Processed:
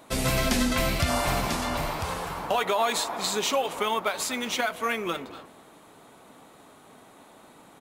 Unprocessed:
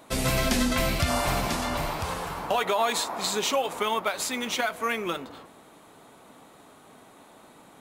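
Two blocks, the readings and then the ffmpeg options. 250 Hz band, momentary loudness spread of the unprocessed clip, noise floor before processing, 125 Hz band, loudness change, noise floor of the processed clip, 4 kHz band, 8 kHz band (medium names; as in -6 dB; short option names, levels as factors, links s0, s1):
0.0 dB, 7 LU, -53 dBFS, 0.0 dB, 0.0 dB, -53 dBFS, 0.0 dB, 0.0 dB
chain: -filter_complex "[0:a]asplit=2[s0][s1];[s1]adelay=240,highpass=300,lowpass=3400,asoftclip=type=hard:threshold=0.0841,volume=0.178[s2];[s0][s2]amix=inputs=2:normalize=0"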